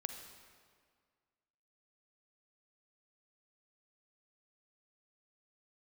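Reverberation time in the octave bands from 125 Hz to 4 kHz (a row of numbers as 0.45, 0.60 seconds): 1.9, 2.0, 1.9, 1.9, 1.7, 1.4 seconds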